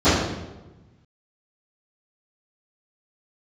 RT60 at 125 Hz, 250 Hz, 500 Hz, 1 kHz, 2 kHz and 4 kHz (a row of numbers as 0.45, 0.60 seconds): 1.7, 1.4, 1.2, 1.0, 0.85, 0.80 seconds